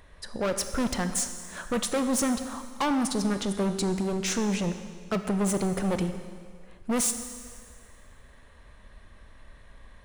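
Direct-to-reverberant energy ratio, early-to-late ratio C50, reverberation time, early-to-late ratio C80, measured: 8.0 dB, 9.0 dB, 1.9 s, 10.0 dB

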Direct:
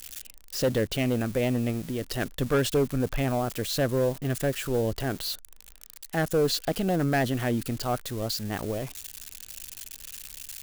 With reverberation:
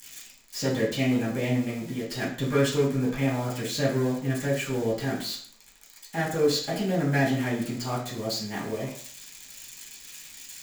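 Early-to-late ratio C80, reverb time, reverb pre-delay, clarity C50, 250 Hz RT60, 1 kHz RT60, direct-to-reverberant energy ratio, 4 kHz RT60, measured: 9.5 dB, 0.50 s, 3 ms, 5.5 dB, 0.55 s, 0.50 s, -8.5 dB, 0.45 s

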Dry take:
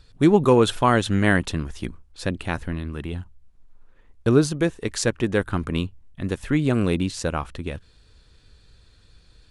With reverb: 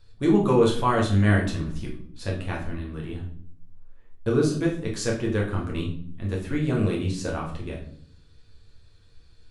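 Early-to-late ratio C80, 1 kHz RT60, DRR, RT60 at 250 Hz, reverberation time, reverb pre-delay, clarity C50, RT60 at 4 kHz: 11.5 dB, 0.50 s, -2.5 dB, 0.95 s, 0.55 s, 9 ms, 7.0 dB, 0.45 s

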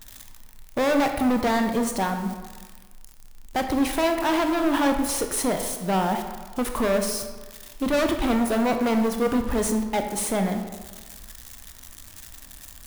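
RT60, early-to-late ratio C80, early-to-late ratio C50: 1.4 s, 8.5 dB, 7.0 dB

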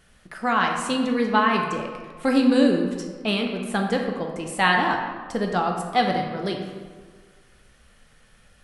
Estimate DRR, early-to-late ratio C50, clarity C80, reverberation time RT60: 1.5 dB, 4.5 dB, 6.0 dB, 1.6 s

